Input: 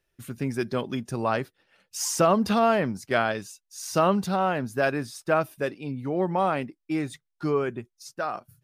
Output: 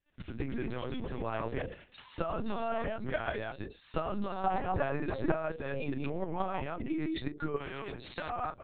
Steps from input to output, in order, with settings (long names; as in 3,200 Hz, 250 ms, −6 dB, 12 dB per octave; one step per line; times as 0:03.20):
delay that plays each chunk backwards 135 ms, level −2 dB
low-shelf EQ 150 Hz −2 dB
mains-hum notches 60/120/180/240/300/360/420/480/540 Hz
output level in coarse steps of 11 dB
transient designer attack +8 dB, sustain +12 dB
downward compressor 20 to 1, threshold −30 dBFS, peak gain reduction 17.5 dB
0:00.67–0:01.18: hard clipping −33 dBFS, distortion −21 dB
0:04.46–0:05.32: hollow resonant body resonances 340/770/1,100/2,000 Hz, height 15 dB, ringing for 80 ms
double-tracking delay 35 ms −13 dB
linear-prediction vocoder at 8 kHz pitch kept
0:07.56–0:08.30: every bin compressed towards the loudest bin 2 to 1